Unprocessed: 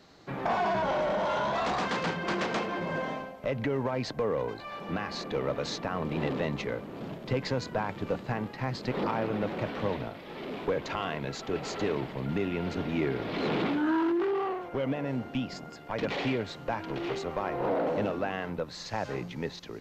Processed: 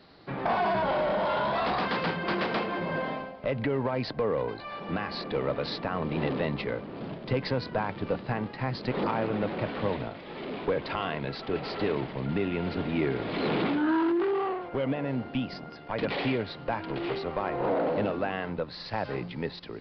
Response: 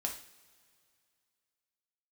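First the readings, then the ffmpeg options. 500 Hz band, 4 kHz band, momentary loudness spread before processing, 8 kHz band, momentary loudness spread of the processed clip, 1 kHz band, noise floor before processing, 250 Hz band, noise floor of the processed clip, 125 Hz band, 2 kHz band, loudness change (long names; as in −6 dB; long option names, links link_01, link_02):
+1.5 dB, +1.5 dB, 7 LU, below −15 dB, 7 LU, +1.5 dB, −45 dBFS, +1.5 dB, −43 dBFS, +1.5 dB, +1.5 dB, +1.5 dB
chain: -af "aresample=11025,aresample=44100,volume=1.5dB"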